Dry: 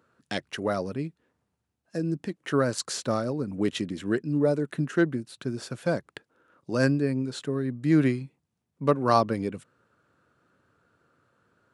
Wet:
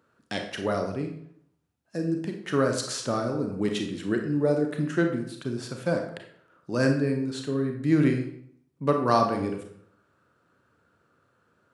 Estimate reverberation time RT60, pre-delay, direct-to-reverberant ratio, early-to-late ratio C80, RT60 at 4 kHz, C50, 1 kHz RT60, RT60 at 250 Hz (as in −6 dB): 0.70 s, 30 ms, 3.5 dB, 9.5 dB, 0.50 s, 6.0 dB, 0.65 s, 0.75 s